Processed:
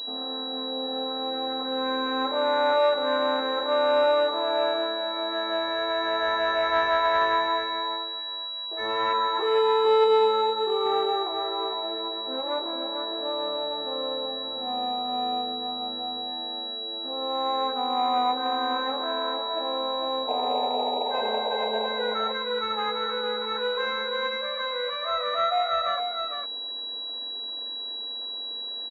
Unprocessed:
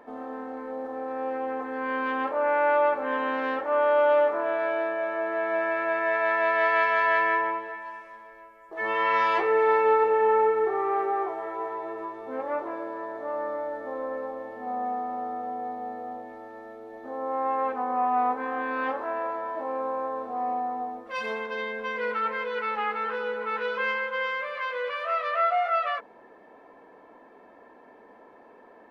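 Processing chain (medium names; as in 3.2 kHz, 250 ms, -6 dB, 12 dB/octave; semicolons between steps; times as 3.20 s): 9.13–10.86 s: static phaser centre 450 Hz, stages 8; 20.27–21.87 s: painted sound noise 400–950 Hz -30 dBFS; delay 456 ms -6 dB; class-D stage that switches slowly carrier 3.9 kHz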